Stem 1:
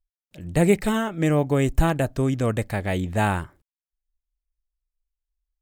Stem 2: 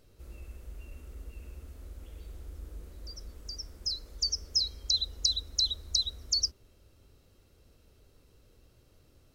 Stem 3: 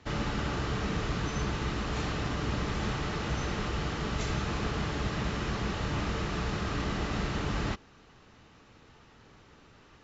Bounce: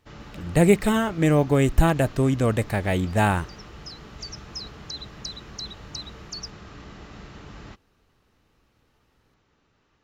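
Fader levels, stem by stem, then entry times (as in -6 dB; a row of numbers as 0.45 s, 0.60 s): +1.5 dB, -8.5 dB, -11.0 dB; 0.00 s, 0.00 s, 0.00 s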